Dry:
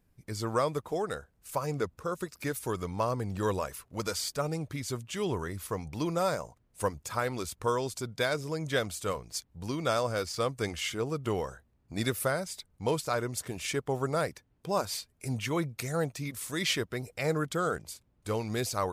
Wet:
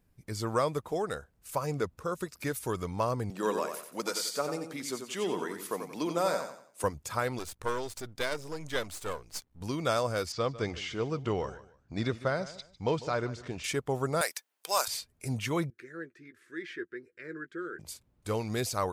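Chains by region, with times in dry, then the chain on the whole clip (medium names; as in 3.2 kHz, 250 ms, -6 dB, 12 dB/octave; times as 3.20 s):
3.30–6.84 s: high-pass 210 Hz 24 dB/octave + feedback delay 90 ms, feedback 35%, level -7 dB
7.39–9.61 s: partial rectifier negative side -12 dB + peaking EQ 150 Hz -4 dB
10.32–13.64 s: de-esser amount 90% + low-pass 6.1 kHz 24 dB/octave + feedback delay 150 ms, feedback 24%, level -16.5 dB
14.21–14.88 s: high-pass 580 Hz + tilt EQ +3.5 dB/octave + waveshaping leveller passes 1
15.70–17.79 s: two resonant band-passes 770 Hz, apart 2.2 oct + doubling 12 ms -11 dB
whole clip: none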